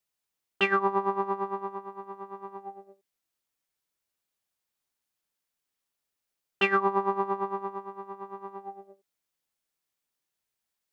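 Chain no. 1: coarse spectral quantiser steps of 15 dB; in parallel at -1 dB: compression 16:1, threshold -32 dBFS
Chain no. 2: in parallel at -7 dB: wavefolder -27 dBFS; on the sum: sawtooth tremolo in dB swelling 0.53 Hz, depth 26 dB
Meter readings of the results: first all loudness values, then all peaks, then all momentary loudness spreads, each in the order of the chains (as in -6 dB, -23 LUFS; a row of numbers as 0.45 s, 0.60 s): -28.0 LUFS, -36.0 LUFS; -10.0 dBFS, -19.5 dBFS; 15 LU, 21 LU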